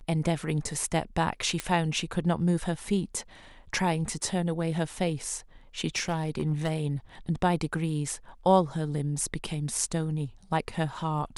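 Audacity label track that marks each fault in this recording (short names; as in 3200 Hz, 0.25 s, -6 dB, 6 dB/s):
1.600000	1.600000	pop -14 dBFS
5.960000	6.720000	clipped -21.5 dBFS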